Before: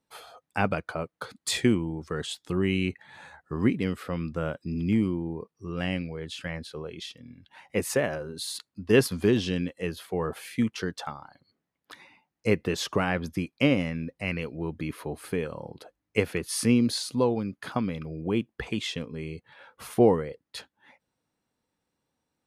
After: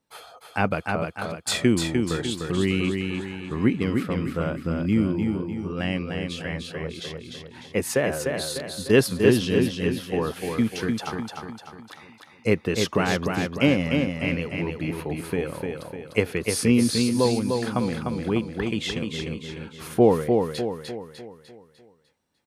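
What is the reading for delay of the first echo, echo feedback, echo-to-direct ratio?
0.3 s, 46%, -3.5 dB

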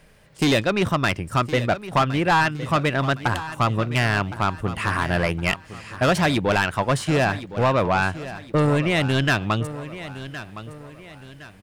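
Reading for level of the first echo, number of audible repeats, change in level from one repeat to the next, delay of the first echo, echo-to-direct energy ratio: -14.0 dB, 3, -8.0 dB, 1.064 s, -13.5 dB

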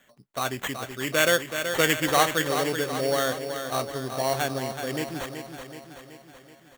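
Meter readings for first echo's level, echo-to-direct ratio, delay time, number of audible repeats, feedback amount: -8.0 dB, -6.5 dB, 0.377 s, 6, 57%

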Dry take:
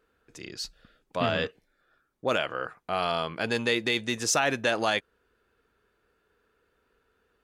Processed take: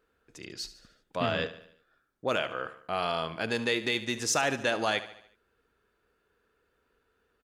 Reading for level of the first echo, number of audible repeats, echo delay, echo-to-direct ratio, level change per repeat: -14.5 dB, 4, 73 ms, -13.0 dB, -6.0 dB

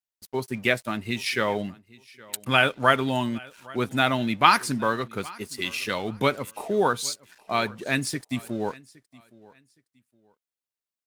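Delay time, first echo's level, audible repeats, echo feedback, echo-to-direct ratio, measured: 0.816 s, -23.0 dB, 2, 26%, -22.5 dB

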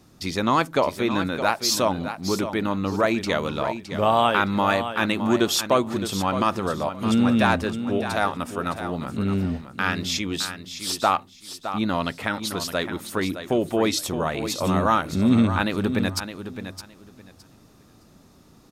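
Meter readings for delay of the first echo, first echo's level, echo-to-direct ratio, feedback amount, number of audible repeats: 0.614 s, -10.0 dB, -10.0 dB, 19%, 2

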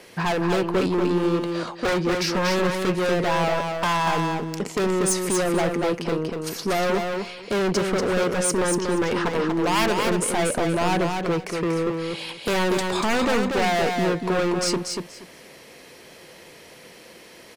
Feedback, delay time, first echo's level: 19%, 0.238 s, -4.5 dB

